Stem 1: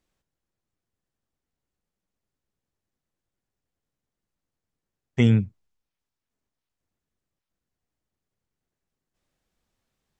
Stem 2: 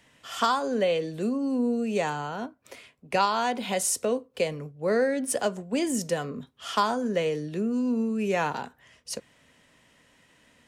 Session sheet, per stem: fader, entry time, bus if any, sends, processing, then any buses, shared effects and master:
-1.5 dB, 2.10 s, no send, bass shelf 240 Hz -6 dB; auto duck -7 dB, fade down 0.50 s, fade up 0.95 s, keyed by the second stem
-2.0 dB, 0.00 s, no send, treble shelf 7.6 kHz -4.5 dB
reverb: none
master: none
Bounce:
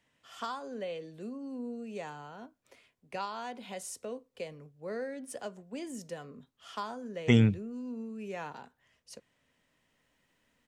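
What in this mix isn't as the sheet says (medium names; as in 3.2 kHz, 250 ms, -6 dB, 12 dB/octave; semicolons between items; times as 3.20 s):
stem 1 -1.5 dB -> +6.5 dB; stem 2 -2.0 dB -> -13.5 dB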